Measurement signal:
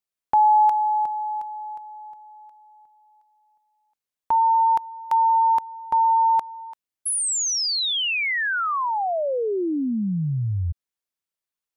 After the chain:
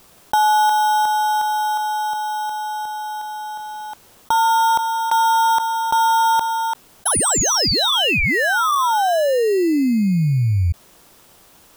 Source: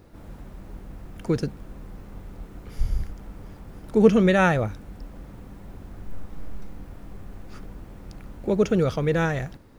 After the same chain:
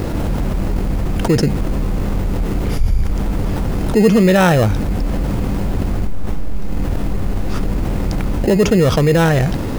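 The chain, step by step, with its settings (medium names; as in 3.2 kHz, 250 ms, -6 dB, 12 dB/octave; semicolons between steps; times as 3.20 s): in parallel at -4 dB: sample-and-hold 19×; on the sum: level flattener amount 70%; trim -2 dB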